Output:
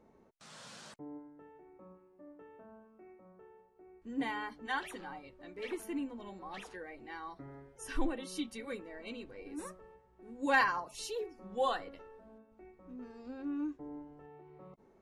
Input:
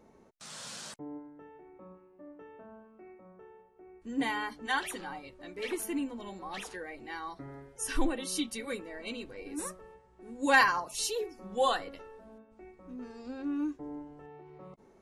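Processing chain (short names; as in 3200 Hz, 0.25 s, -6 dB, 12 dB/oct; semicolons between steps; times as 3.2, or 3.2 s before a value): high shelf 4400 Hz -10 dB; gain -4 dB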